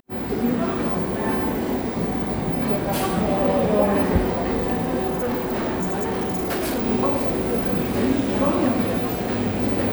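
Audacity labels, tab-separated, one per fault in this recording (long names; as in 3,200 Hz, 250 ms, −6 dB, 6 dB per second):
5.090000	6.850000	clipping −21 dBFS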